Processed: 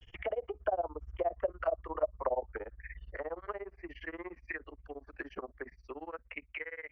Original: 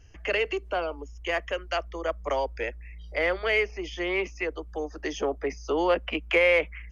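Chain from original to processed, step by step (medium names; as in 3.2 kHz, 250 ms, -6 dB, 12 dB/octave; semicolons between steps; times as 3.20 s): fade out at the end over 1.68 s; Doppler pass-by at 1.45 s, 26 m/s, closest 15 m; compression 2.5:1, threshold -48 dBFS, peak gain reduction 16 dB; granulator 63 ms, grains 17 per s, spray 10 ms, pitch spread up and down by 0 st; touch-sensitive low-pass 640–3400 Hz down, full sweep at -43 dBFS; trim +8 dB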